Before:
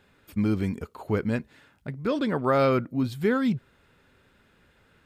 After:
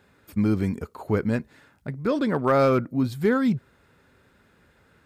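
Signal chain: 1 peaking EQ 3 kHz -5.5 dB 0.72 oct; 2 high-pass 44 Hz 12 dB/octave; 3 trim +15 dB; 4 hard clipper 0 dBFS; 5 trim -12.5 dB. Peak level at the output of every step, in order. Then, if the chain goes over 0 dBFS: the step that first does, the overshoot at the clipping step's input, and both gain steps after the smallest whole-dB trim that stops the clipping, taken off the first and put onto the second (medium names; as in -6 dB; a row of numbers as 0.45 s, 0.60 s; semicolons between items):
-11.0 dBFS, -11.5 dBFS, +3.5 dBFS, 0.0 dBFS, -12.5 dBFS; step 3, 3.5 dB; step 3 +11 dB, step 5 -8.5 dB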